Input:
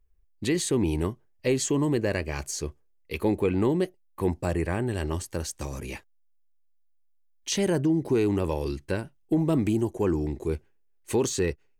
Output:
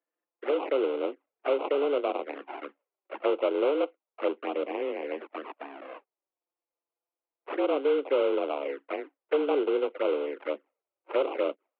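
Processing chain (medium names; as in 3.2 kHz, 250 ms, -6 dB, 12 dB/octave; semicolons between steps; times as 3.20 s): sample-rate reducer 1.6 kHz, jitter 20%; touch-sensitive flanger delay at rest 5.8 ms, full sweep at -23 dBFS; mistuned SSB +140 Hz 180–2700 Hz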